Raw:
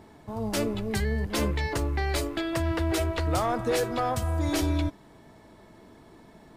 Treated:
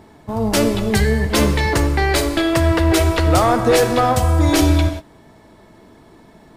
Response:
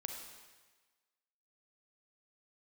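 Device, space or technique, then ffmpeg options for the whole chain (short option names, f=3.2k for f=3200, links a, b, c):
keyed gated reverb: -filter_complex "[0:a]asplit=3[a][b][c];[1:a]atrim=start_sample=2205[d];[b][d]afir=irnorm=-1:irlink=0[e];[c]apad=whole_len=289604[f];[e][f]sidechaingate=range=-33dB:threshold=-39dB:ratio=16:detection=peak,volume=3dB[g];[a][g]amix=inputs=2:normalize=0,volume=5.5dB"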